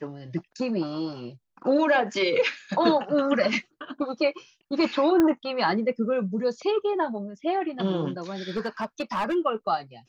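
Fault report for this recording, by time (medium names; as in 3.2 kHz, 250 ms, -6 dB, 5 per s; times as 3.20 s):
5.20 s: pop -10 dBFS
8.49–9.36 s: clipped -22.5 dBFS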